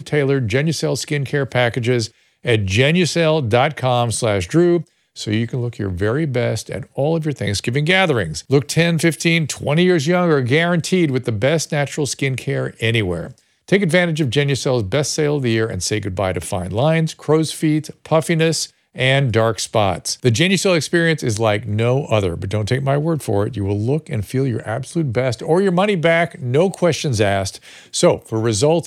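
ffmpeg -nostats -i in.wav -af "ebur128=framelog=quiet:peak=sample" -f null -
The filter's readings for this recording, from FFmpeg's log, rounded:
Integrated loudness:
  I:         -18.0 LUFS
  Threshold: -28.1 LUFS
Loudness range:
  LRA:         3.0 LU
  Threshold: -38.1 LUFS
  LRA low:   -19.5 LUFS
  LRA high:  -16.5 LUFS
Sample peak:
  Peak:       -2.2 dBFS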